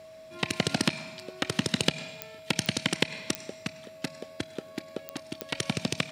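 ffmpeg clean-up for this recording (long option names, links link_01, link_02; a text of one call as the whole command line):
ffmpeg -i in.wav -af "adeclick=threshold=4,bandreject=frequency=640:width=30" out.wav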